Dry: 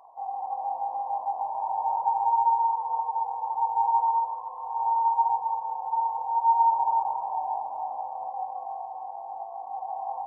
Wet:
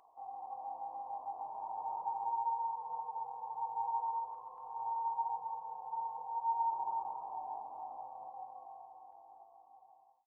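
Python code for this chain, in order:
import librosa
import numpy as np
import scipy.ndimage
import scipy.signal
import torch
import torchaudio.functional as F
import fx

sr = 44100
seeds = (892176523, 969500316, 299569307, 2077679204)

y = fx.fade_out_tail(x, sr, length_s=2.26)
y = fx.band_shelf(y, sr, hz=750.0, db=-9.5, octaves=1.2)
y = F.gain(torch.from_numpy(y), -3.5).numpy()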